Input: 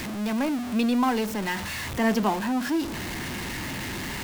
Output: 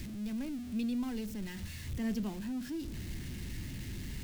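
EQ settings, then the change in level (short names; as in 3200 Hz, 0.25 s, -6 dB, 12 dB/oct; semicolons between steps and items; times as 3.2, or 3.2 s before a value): passive tone stack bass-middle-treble 10-0-1; +7.5 dB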